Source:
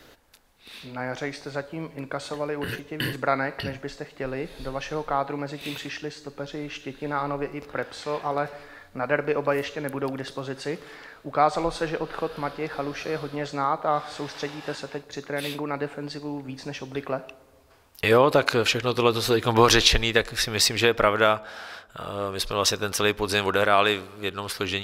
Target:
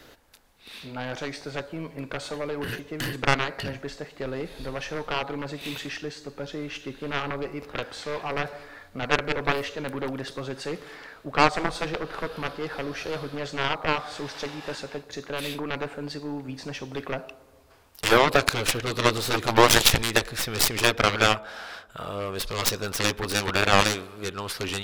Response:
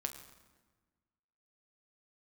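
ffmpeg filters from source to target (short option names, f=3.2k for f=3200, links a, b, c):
-af "acontrast=35,aeval=exprs='0.944*(cos(1*acos(clip(val(0)/0.944,-1,1)))-cos(1*PI/2))+0.168*(cos(6*acos(clip(val(0)/0.944,-1,1)))-cos(6*PI/2))+0.266*(cos(7*acos(clip(val(0)/0.944,-1,1)))-cos(7*PI/2))+0.0531*(cos(8*acos(clip(val(0)/0.944,-1,1)))-cos(8*PI/2))':c=same,volume=-4.5dB"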